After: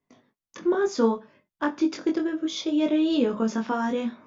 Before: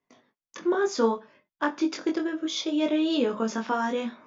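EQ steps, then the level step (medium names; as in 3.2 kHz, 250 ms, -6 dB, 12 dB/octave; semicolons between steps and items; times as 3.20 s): bass shelf 270 Hz +10.5 dB; -2.0 dB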